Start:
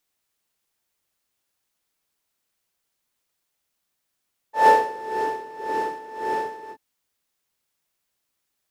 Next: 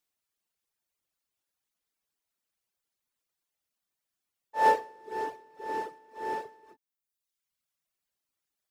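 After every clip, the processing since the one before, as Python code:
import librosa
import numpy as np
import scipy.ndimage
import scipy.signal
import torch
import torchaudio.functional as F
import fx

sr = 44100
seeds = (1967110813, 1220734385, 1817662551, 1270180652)

y = fx.dereverb_blind(x, sr, rt60_s=1.1)
y = y * librosa.db_to_amplitude(-6.5)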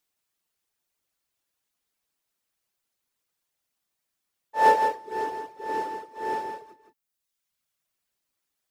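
y = x + 10.0 ** (-6.5 / 20.0) * np.pad(x, (int(165 * sr / 1000.0), 0))[:len(x)]
y = y * librosa.db_to_amplitude(4.0)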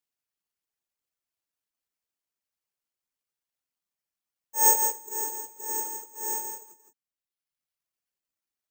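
y = (np.kron(scipy.signal.resample_poly(x, 1, 6), np.eye(6)[0]) * 6)[:len(x)]
y = y * librosa.db_to_amplitude(-9.5)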